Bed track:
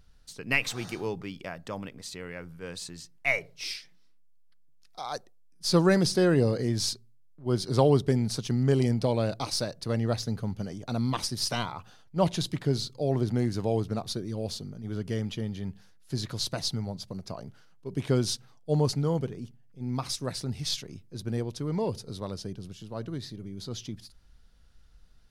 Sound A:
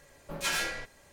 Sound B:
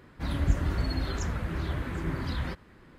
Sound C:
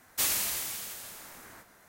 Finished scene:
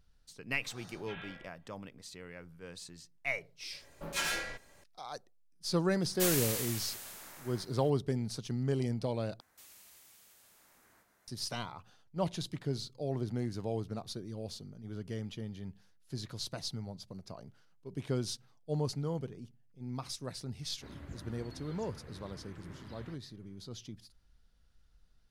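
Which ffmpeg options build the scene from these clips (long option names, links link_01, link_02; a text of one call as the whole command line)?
ffmpeg -i bed.wav -i cue0.wav -i cue1.wav -i cue2.wav -filter_complex "[1:a]asplit=2[link_01][link_02];[3:a]asplit=2[link_03][link_04];[0:a]volume=-8.5dB[link_05];[link_01]aresample=8000,aresample=44100[link_06];[link_03]aeval=exprs='(tanh(10*val(0)+0.35)-tanh(0.35))/10':channel_layout=same[link_07];[link_04]acompressor=threshold=-48dB:ratio=2.5:attack=1.6:release=226:knee=1:detection=peak[link_08];[2:a]highpass=90[link_09];[link_05]asplit=2[link_10][link_11];[link_10]atrim=end=9.404[link_12];[link_08]atrim=end=1.88,asetpts=PTS-STARTPTS,volume=-12.5dB[link_13];[link_11]atrim=start=11.276[link_14];[link_06]atrim=end=1.12,asetpts=PTS-STARTPTS,volume=-15.5dB,afade=type=in:duration=0.004:curve=hsin,afade=type=out:start_time=1.116:duration=0.004:curve=hsin,adelay=640[link_15];[link_02]atrim=end=1.12,asetpts=PTS-STARTPTS,volume=-3dB,afade=type=in:duration=0.004:curve=hsin,afade=type=out:start_time=1.116:duration=0.004:curve=hsin,adelay=3720[link_16];[link_07]atrim=end=1.88,asetpts=PTS-STARTPTS,volume=-2dB,afade=type=in:duration=0.004:curve=hsin,afade=type=out:start_time=1.876:duration=0.004:curve=hsin,adelay=6020[link_17];[link_09]atrim=end=2.98,asetpts=PTS-STARTPTS,volume=-17dB,afade=type=in:duration=0.004:curve=hsin,afade=type=out:start_time=2.976:duration=0.004:curve=hsin,adelay=20610[link_18];[link_12][link_13]acrossfade=duration=0.004:curve1=hsin:curve2=hsin[link_19];[link_19][link_14]acrossfade=duration=0.004:curve1=hsin:curve2=hsin[link_20];[link_20][link_15][link_16][link_17][link_18]amix=inputs=5:normalize=0" out.wav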